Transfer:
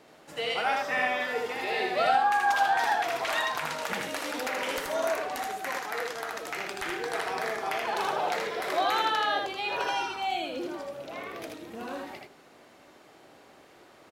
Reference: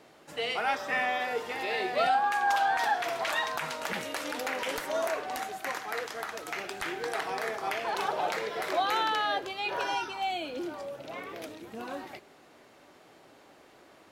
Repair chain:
echo removal 79 ms −3 dB

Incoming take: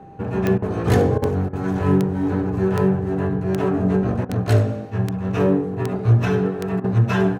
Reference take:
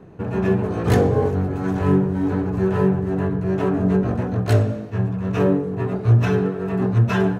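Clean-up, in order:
click removal
notch filter 790 Hz, Q 30
repair the gap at 0:00.58/0:01.18/0:01.49/0:04.25/0:06.80, 40 ms
echo removal 73 ms −14.5 dB

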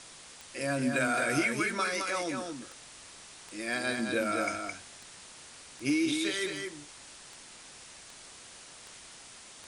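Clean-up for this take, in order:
clipped peaks rebuilt −19 dBFS
click removal
noise reduction from a noise print 27 dB
echo removal 216 ms −5 dB

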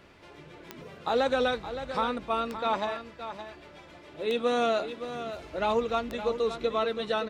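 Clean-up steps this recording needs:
click removal
echo removal 568 ms −10.5 dB

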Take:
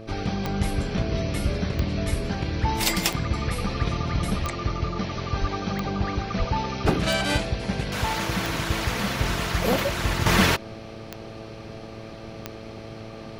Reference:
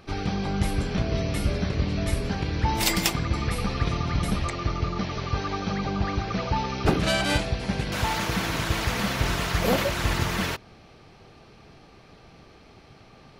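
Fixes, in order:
click removal
hum removal 110.6 Hz, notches 6
high-pass at the plosives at 0:05.40/0:06.38
level 0 dB, from 0:10.26 −8.5 dB

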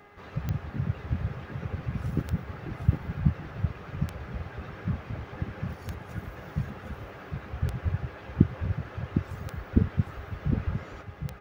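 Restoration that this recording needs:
click removal
hum removal 409.4 Hz, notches 5
echo removal 758 ms −6 dB

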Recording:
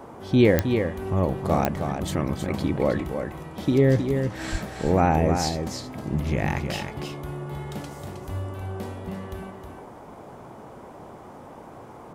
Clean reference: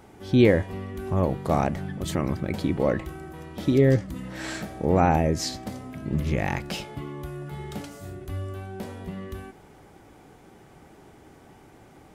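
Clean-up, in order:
click removal
0:04.51–0:04.63: high-pass filter 140 Hz 24 dB per octave
noise reduction from a noise print 8 dB
echo removal 315 ms −6.5 dB

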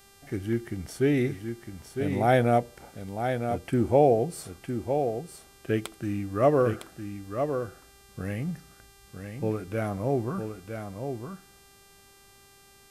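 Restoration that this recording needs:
hum removal 396 Hz, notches 34
echo removal 958 ms −7 dB

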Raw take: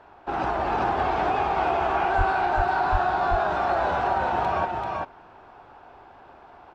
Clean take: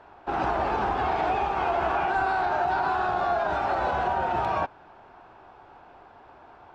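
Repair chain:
0:02.17–0:02.29: high-pass filter 140 Hz 24 dB per octave
0:02.91–0:03.03: high-pass filter 140 Hz 24 dB per octave
echo removal 388 ms −3 dB

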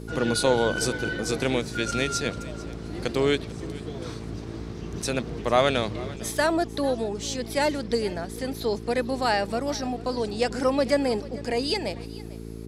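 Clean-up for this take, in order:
hum removal 55.9 Hz, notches 8
echo removal 446 ms −19.5 dB

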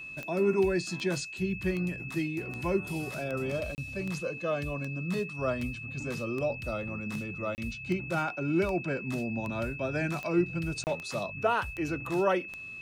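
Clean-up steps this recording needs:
click removal
notch filter 2,600 Hz, Q 30
repair the gap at 0:03.75/0:07.55/0:10.84, 29 ms

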